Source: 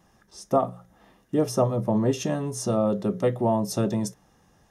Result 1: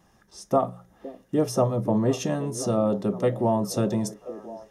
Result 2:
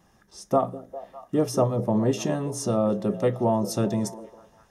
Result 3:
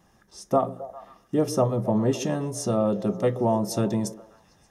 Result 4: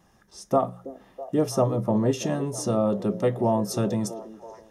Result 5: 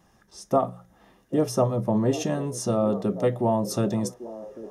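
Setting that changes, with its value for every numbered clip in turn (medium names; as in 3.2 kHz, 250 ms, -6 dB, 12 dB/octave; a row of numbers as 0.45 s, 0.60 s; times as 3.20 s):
repeats whose band climbs or falls, time: 514 ms, 201 ms, 133 ms, 326 ms, 792 ms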